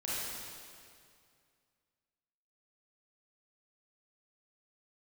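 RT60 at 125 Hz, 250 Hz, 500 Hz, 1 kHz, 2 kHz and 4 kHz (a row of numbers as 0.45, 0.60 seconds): 2.6, 2.3, 2.3, 2.2, 2.1, 2.0 seconds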